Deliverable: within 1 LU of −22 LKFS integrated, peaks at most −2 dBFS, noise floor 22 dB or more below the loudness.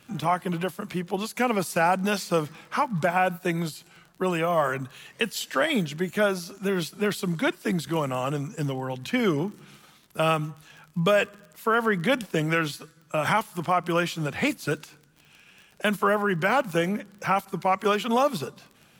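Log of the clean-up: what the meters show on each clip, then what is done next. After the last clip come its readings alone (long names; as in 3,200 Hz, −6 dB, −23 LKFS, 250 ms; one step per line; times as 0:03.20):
crackle rate 28 per second; integrated loudness −26.0 LKFS; sample peak −11.5 dBFS; target loudness −22.0 LKFS
→ click removal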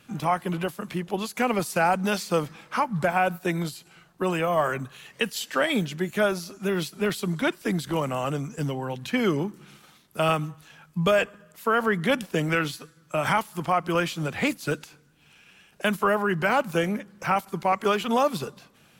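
crackle rate 0.42 per second; integrated loudness −26.0 LKFS; sample peak −11.5 dBFS; target loudness −22.0 LKFS
→ level +4 dB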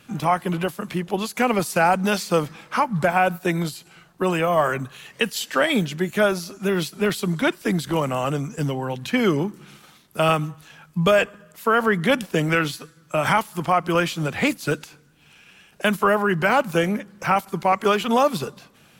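integrated loudness −22.0 LKFS; sample peak −7.5 dBFS; background noise floor −54 dBFS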